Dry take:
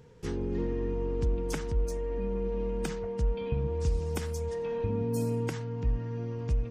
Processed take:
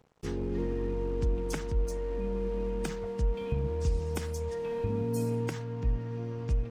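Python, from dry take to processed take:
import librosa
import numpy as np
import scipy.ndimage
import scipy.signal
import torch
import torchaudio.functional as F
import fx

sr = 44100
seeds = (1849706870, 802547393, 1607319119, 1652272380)

y = np.sign(x) * np.maximum(np.abs(x) - 10.0 ** (-52.0 / 20.0), 0.0)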